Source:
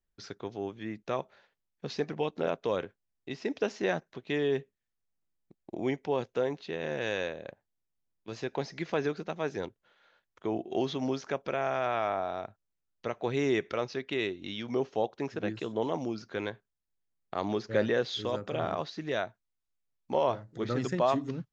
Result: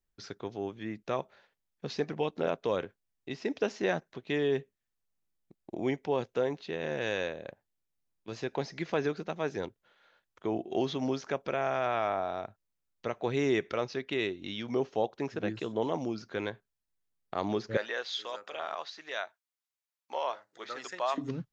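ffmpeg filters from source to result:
ffmpeg -i in.wav -filter_complex "[0:a]asettb=1/sr,asplit=3[link_01][link_02][link_03];[link_01]atrim=end=17.774[link_04];[link_02]atrim=start=17.77:end=21.18,asetpts=PTS-STARTPTS,afade=type=in:duration=0.004:curve=qsin,afade=type=out:start_time=3.406:duration=0.004:curve=qsin,highpass=860[link_05];[link_03]atrim=start=21.176[link_06];[link_04][link_05]acrossfade=duration=0.004:curve1=hsin:curve2=qsin[link_07];[link_07][link_06]acrossfade=duration=0.004:curve1=qsin:curve2=hsin" out.wav

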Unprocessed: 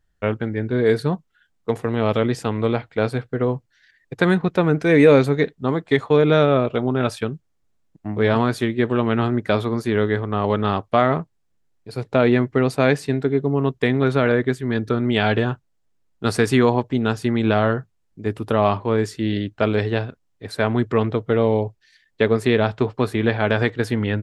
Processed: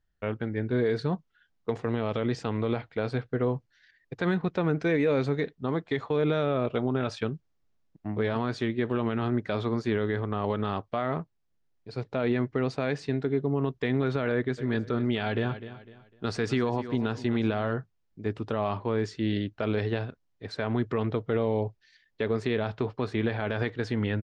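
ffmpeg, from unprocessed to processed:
ffmpeg -i in.wav -filter_complex "[0:a]asplit=3[link_01][link_02][link_03];[link_01]afade=type=out:start_time=14.57:duration=0.02[link_04];[link_02]aecho=1:1:251|502|753:0.15|0.0494|0.0163,afade=type=in:start_time=14.57:duration=0.02,afade=type=out:start_time=17.7:duration=0.02[link_05];[link_03]afade=type=in:start_time=17.7:duration=0.02[link_06];[link_04][link_05][link_06]amix=inputs=3:normalize=0,lowpass=frequency=6200:width=0.5412,lowpass=frequency=6200:width=1.3066,dynaudnorm=framelen=150:gausssize=7:maxgain=7dB,alimiter=limit=-8.5dB:level=0:latency=1:release=53,volume=-8dB" out.wav

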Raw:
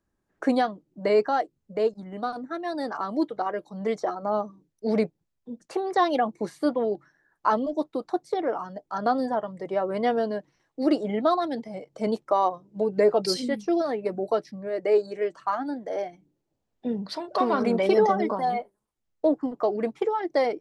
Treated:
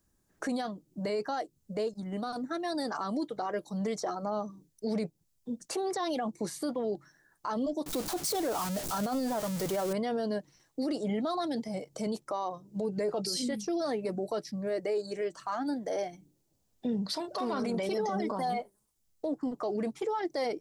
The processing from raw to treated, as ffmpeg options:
ffmpeg -i in.wav -filter_complex "[0:a]asettb=1/sr,asplit=3[link_01][link_02][link_03];[link_01]atrim=end=7.864[link_04];[link_02]atrim=start=7.86:end=9.93,asetpts=PTS-STARTPTS,afade=type=in:duration=0.004:curve=qsin,afade=type=out:start_time=2.066:duration=0.004:curve=qsin,aeval=exprs='val(0)+0.5*0.02*sgn(val(0))':channel_layout=same[link_05];[link_03]atrim=start=9.926[link_06];[link_04][link_05]acrossfade=duration=0.004:curve1=hsin:curve2=qsin[link_07];[link_07][link_06]acrossfade=duration=0.004:curve1=qsin:curve2=hsin,bass=frequency=250:gain=5,treble=frequency=4000:gain=14,acompressor=threshold=-33dB:ratio=1.5,alimiter=level_in=0.5dB:limit=-24dB:level=0:latency=1:release=17,volume=-0.5dB" out.wav

